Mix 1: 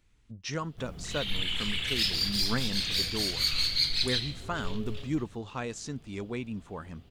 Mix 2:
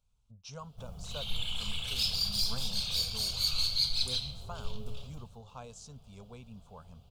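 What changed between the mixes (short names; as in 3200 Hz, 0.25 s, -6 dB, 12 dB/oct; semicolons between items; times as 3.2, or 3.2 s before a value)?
speech -7.5 dB; master: add fixed phaser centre 780 Hz, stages 4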